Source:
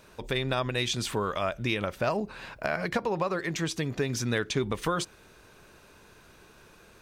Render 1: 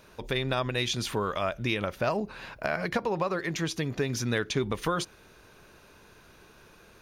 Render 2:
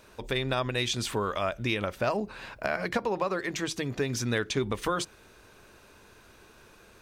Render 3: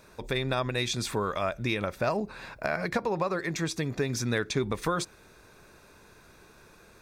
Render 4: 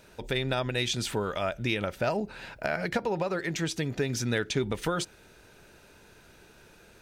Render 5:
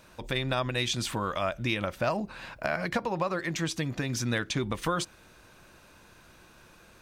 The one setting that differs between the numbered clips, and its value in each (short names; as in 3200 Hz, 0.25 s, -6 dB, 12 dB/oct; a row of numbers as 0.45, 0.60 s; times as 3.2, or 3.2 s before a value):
notch, frequency: 7900, 160, 3000, 1100, 420 Hz